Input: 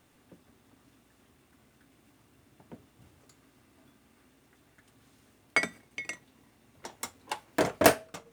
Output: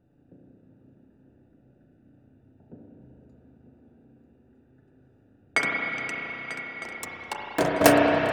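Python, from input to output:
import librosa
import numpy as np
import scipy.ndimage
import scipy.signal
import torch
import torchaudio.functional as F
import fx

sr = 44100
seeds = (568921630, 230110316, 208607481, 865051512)

y = fx.wiener(x, sr, points=41)
y = fx.echo_swing(y, sr, ms=1256, ratio=3, feedback_pct=46, wet_db=-12.5)
y = fx.rev_spring(y, sr, rt60_s=4.0, pass_ms=(31, 38), chirp_ms=70, drr_db=-3.0)
y = y * 10.0 ** (2.0 / 20.0)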